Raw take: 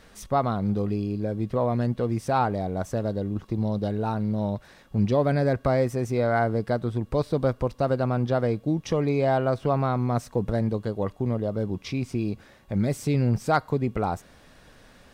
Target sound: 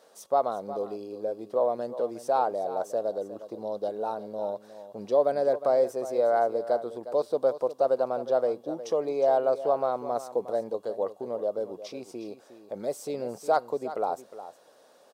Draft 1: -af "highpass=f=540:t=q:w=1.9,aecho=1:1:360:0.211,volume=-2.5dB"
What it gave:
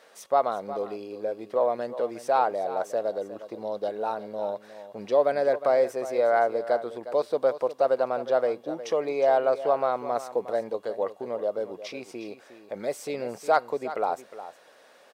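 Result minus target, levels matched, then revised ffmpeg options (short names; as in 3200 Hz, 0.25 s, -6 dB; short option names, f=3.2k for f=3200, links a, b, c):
2000 Hz band +7.0 dB
-af "highpass=f=540:t=q:w=1.9,equalizer=f=2.1k:t=o:w=1.3:g=-12.5,aecho=1:1:360:0.211,volume=-2.5dB"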